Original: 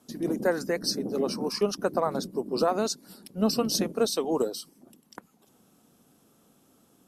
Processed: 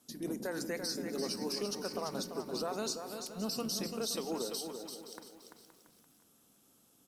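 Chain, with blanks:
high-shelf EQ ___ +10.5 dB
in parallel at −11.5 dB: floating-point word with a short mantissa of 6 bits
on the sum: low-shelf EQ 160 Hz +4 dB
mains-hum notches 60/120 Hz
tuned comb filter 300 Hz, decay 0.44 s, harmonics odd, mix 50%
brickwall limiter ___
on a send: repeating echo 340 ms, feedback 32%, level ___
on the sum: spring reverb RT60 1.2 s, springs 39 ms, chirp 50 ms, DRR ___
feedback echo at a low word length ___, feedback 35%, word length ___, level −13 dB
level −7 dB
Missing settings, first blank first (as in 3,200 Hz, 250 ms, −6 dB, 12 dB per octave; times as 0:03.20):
2,100 Hz, −20.5 dBFS, −7 dB, 16.5 dB, 521 ms, 8 bits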